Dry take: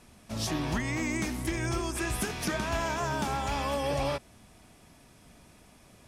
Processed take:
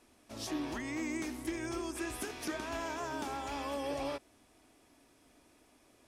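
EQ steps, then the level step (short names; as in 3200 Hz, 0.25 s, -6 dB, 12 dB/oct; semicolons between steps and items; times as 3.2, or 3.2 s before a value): resonant low shelf 230 Hz -6.5 dB, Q 3; -8.0 dB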